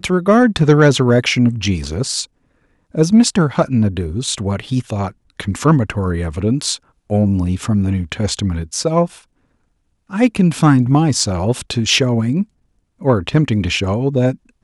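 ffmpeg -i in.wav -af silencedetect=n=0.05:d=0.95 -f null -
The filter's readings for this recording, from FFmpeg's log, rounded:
silence_start: 9.06
silence_end: 10.12 | silence_duration: 1.05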